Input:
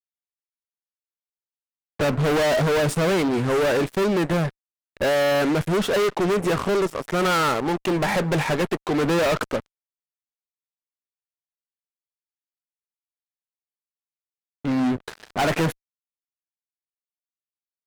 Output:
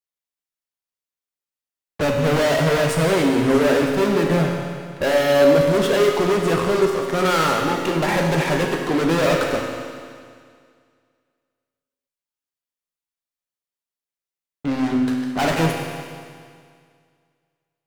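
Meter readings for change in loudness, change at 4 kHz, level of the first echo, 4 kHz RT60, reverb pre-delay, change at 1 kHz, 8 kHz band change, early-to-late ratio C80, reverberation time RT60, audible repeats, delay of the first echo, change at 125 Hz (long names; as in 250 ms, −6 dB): +3.0 dB, +3.0 dB, no echo audible, 2.1 s, 7 ms, +2.5 dB, +3.0 dB, 3.5 dB, 2.0 s, no echo audible, no echo audible, +2.5 dB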